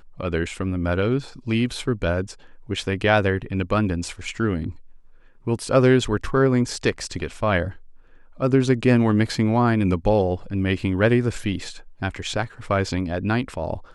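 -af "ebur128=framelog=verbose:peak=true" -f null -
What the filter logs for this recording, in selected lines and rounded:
Integrated loudness:
  I:         -22.5 LUFS
  Threshold: -33.0 LUFS
Loudness range:
  LRA:         3.8 LU
  Threshold: -42.5 LUFS
  LRA low:   -24.5 LUFS
  LRA high:  -20.6 LUFS
True peak:
  Peak:       -3.8 dBFS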